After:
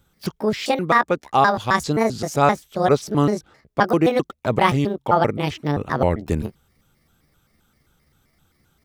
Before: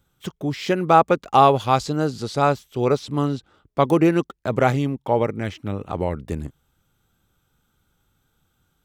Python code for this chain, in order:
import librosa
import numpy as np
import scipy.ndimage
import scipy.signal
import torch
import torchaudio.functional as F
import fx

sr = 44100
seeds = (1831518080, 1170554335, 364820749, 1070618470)

y = fx.pitch_trill(x, sr, semitones=6.5, every_ms=131)
y = fx.rider(y, sr, range_db=4, speed_s=0.5)
y = y * librosa.db_to_amplitude(1.5)